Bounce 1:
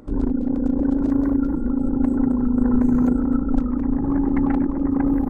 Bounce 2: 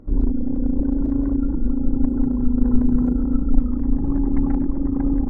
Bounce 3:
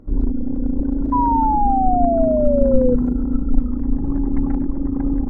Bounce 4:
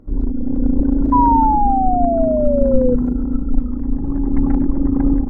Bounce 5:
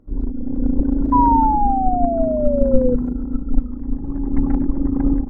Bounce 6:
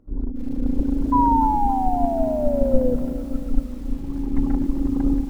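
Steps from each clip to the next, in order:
spectral tilt −3 dB per octave; level −8 dB
sound drawn into the spectrogram fall, 0:01.12–0:02.95, 490–1,000 Hz −18 dBFS
automatic gain control; level −1 dB
expander for the loud parts 1.5 to 1, over −24 dBFS; level +1 dB
feedback echo at a low word length 282 ms, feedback 55%, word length 6 bits, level −14 dB; level −3.5 dB

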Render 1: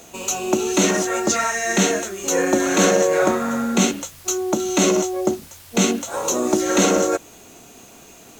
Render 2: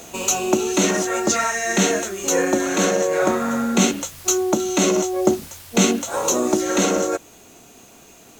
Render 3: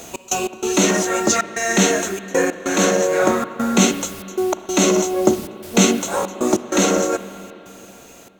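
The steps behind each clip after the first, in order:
speech leveller within 5 dB 0.5 s
gate pattern "x.x.xxxxx.xxx" 96 BPM −24 dB; convolution reverb RT60 3.5 s, pre-delay 41 ms, DRR 12.5 dB; level +2.5 dB

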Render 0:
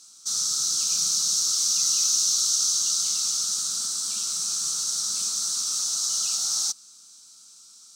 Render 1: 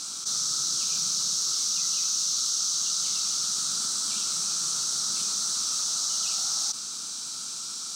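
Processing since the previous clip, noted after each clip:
high-shelf EQ 5,600 Hz −10 dB
envelope flattener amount 70%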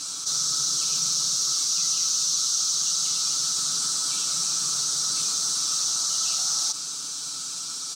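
comb filter 6.9 ms, depth 90%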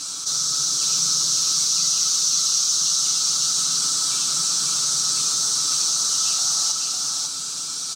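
single-tap delay 549 ms −3.5 dB
level +2.5 dB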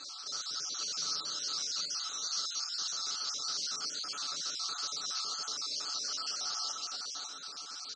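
time-frequency cells dropped at random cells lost 34%
loudspeaker in its box 400–4,400 Hz, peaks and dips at 970 Hz −7 dB, 2,400 Hz −5 dB, 3,500 Hz −7 dB
level −4 dB

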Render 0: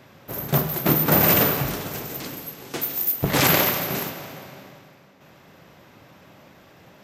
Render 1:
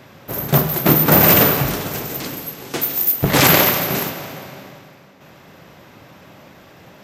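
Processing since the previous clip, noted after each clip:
gain into a clipping stage and back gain 9 dB
level +6 dB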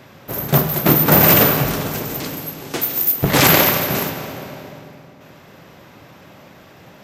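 feedback echo with a low-pass in the loop 221 ms, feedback 64%, low-pass 1,500 Hz, level −13 dB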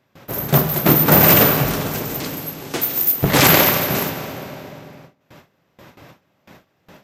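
noise gate with hold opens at −32 dBFS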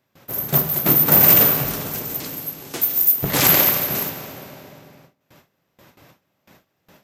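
high-shelf EQ 6,200 Hz +9.5 dB
level −7 dB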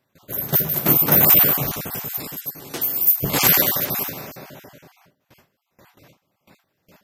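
time-frequency cells dropped at random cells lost 25%

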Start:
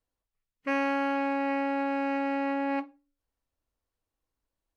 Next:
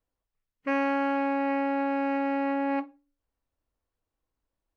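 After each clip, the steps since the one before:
high-shelf EQ 3,200 Hz −8.5 dB
level +2 dB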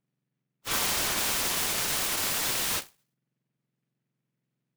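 frequency axis turned over on the octave scale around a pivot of 1,600 Hz
short delay modulated by noise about 1,800 Hz, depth 0.14 ms

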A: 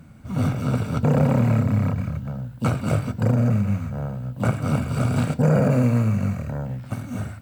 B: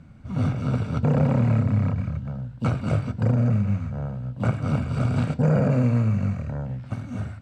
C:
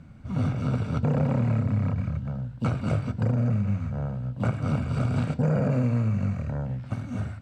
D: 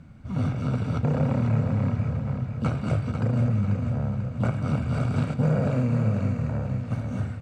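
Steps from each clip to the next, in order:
low-pass filter 5,700 Hz 12 dB per octave; low-shelf EQ 100 Hz +6.5 dB; level −3.5 dB
downward compressor 2 to 1, threshold −23 dBFS, peak gain reduction 4.5 dB
repeating echo 491 ms, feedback 51%, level −7 dB

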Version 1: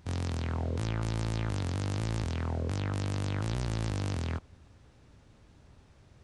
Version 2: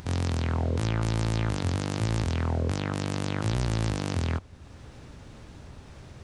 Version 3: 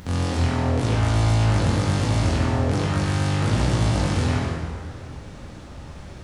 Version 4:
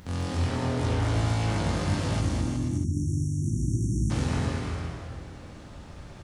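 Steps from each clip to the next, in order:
mains-hum notches 50/100 Hz; in parallel at −1 dB: upward compression, threshold −35 dBFS
dense smooth reverb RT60 2.2 s, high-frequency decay 0.7×, DRR −6.5 dB
time-frequency box erased 0:02.20–0:04.10, 380–5,500 Hz; bouncing-ball delay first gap 210 ms, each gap 0.75×, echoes 5; level −7 dB

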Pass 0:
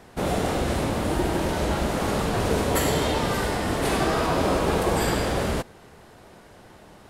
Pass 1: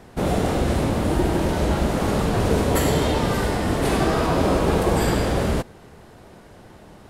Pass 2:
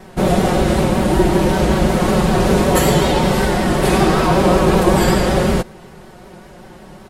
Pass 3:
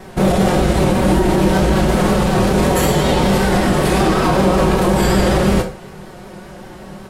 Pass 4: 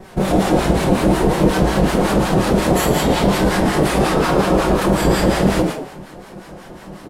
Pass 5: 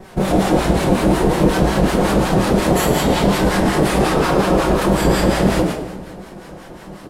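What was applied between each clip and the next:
low-shelf EQ 470 Hz +5.5 dB
comb filter 5.4 ms, depth 69%; pitch vibrato 5.3 Hz 50 cents; level +5 dB
brickwall limiter −10 dBFS, peak gain reduction 8 dB; convolution reverb RT60 0.35 s, pre-delay 12 ms, DRR 6 dB; level +3 dB
echo with shifted repeats 110 ms, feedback 33%, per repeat +120 Hz, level −3.5 dB; two-band tremolo in antiphase 5.5 Hz, depth 70%, crossover 860 Hz
echo with a time of its own for lows and highs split 720 Hz, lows 249 ms, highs 98 ms, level −15.5 dB

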